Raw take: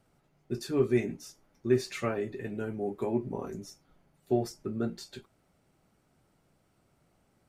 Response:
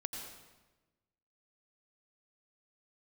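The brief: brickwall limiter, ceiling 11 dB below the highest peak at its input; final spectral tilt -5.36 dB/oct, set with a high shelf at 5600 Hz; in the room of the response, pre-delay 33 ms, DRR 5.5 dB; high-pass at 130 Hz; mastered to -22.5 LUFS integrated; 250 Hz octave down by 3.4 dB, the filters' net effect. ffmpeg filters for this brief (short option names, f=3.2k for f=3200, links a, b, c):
-filter_complex "[0:a]highpass=130,equalizer=f=250:t=o:g=-4.5,highshelf=f=5.6k:g=-7.5,alimiter=level_in=2.5dB:limit=-24dB:level=0:latency=1,volume=-2.5dB,asplit=2[a][b];[1:a]atrim=start_sample=2205,adelay=33[c];[b][c]afir=irnorm=-1:irlink=0,volume=-5.5dB[d];[a][d]amix=inputs=2:normalize=0,volume=16dB"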